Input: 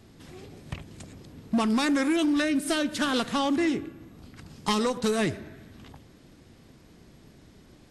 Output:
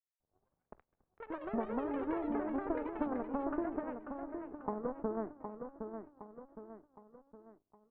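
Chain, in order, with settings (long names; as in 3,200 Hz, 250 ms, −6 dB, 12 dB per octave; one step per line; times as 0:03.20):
noise gate with hold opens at −41 dBFS
high-pass filter 320 Hz 12 dB per octave
downward compressor 6 to 1, threshold −28 dBFS, peak gain reduction 7 dB
harmonic generator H 5 −19 dB, 6 −26 dB, 7 −13 dB, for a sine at −15.5 dBFS
Gaussian smoothing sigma 9.5 samples
repeating echo 764 ms, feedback 46%, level −7 dB
delay with pitch and tempo change per echo 217 ms, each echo +6 semitones, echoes 2, each echo −6 dB
level +1 dB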